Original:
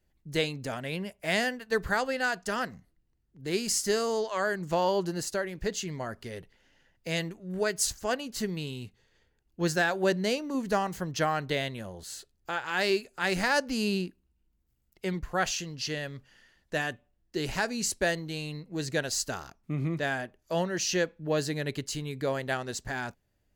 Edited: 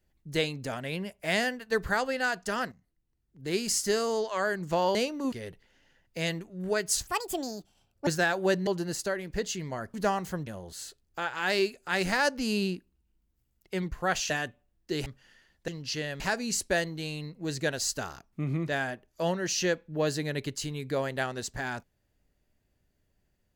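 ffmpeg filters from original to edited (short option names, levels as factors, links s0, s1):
-filter_complex "[0:a]asplit=13[s0][s1][s2][s3][s4][s5][s6][s7][s8][s9][s10][s11][s12];[s0]atrim=end=2.72,asetpts=PTS-STARTPTS,afade=t=out:st=2.716:d=0.004:c=hsin:silence=0.199526[s13];[s1]atrim=start=2.72:end=4.952,asetpts=PTS-STARTPTS,afade=t=in:d=0.74:silence=0.199526[s14];[s2]atrim=start=10.248:end=10.622[s15];[s3]atrim=start=6.218:end=7.974[s16];[s4]atrim=start=7.97:end=9.65,asetpts=PTS-STARTPTS,asetrate=74088,aresample=44100[s17];[s5]atrim=start=9.646:end=10.252[s18];[s6]atrim=start=4.948:end=6.222[s19];[s7]atrim=start=10.618:end=11.152[s20];[s8]atrim=start=11.778:end=15.612[s21];[s9]atrim=start=16.748:end=17.512[s22];[s10]atrim=start=16.128:end=16.752[s23];[s11]atrim=start=15.608:end=16.132[s24];[s12]atrim=start=17.508[s25];[s13][s14]concat=n=2:v=0:a=1[s26];[s26][s15]acrossfade=d=0.004:c1=hsin:c2=hsin[s27];[s27][s16]acrossfade=d=0.004:c1=hsin:c2=hsin[s28];[s28][s17]acrossfade=d=0.004:c1=hsin:c2=hsin[s29];[s29][s18]acrossfade=d=0.004:c1=hsin:c2=hsin[s30];[s30][s19]acrossfade=d=0.004:c1=hsin:c2=hsin[s31];[s31][s20]acrossfade=d=0.004:c1=hsin:c2=hsin[s32];[s32][s21]acrossfade=d=0.004:c1=hsin:c2=hsin[s33];[s33][s22]acrossfade=d=0.004:c1=hsin:c2=hsin[s34];[s34][s23]acrossfade=d=0.004:c1=hsin:c2=hsin[s35];[s35][s24]acrossfade=d=0.004:c1=hsin:c2=hsin[s36];[s36][s25]acrossfade=d=0.004:c1=hsin:c2=hsin"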